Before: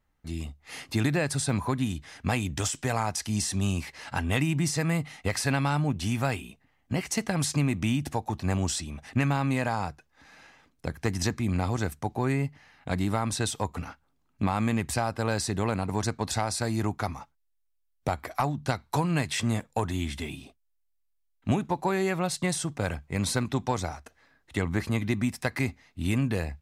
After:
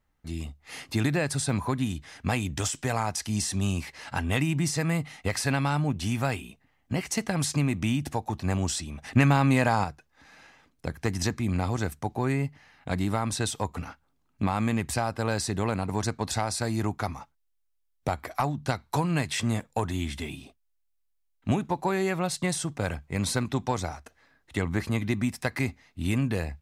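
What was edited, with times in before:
9.04–9.84 s: gain +5 dB

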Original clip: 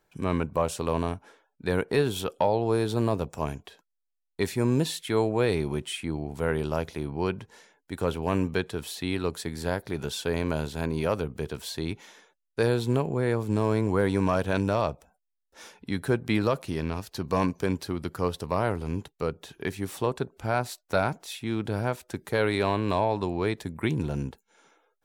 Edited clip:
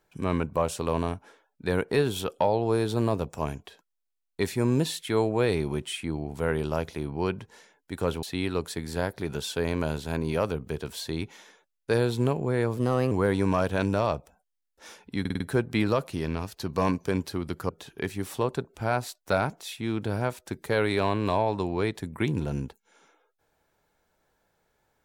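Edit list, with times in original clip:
8.23–8.92 s: delete
13.46–13.86 s: speed 117%
15.95 s: stutter 0.05 s, 5 plays
18.24–19.32 s: delete

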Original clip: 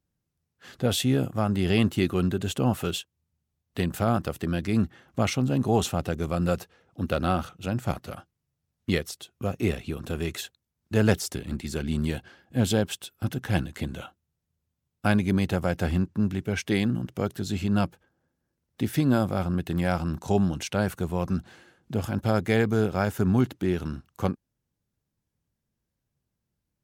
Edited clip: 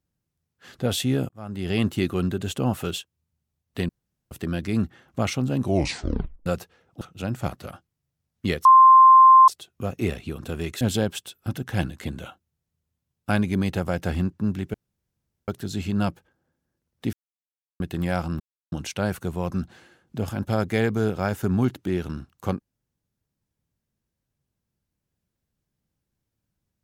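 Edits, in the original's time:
1.29–1.86 s: fade in
3.89–4.31 s: room tone
5.61 s: tape stop 0.85 s
7.01–7.45 s: delete
9.09 s: add tone 1.05 kHz -8 dBFS 0.83 s
10.42–12.57 s: delete
16.50–17.24 s: room tone
18.89–19.56 s: mute
20.16–20.48 s: mute

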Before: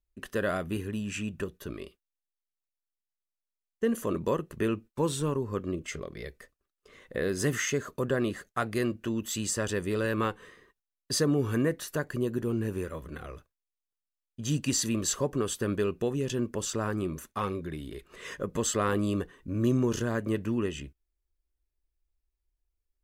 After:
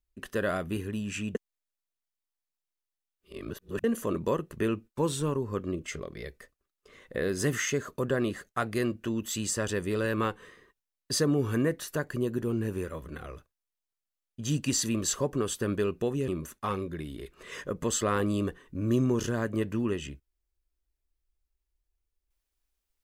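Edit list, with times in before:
1.35–3.84 s: reverse
16.28–17.01 s: delete

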